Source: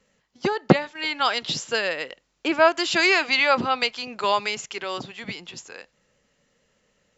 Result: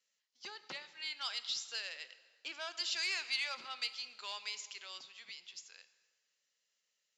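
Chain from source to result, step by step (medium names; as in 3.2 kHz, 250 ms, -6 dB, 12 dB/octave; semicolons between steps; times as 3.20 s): saturation -12 dBFS, distortion -12 dB; band-pass filter 5 kHz, Q 1.3; plate-style reverb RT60 1.7 s, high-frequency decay 0.75×, DRR 12 dB; trim -8 dB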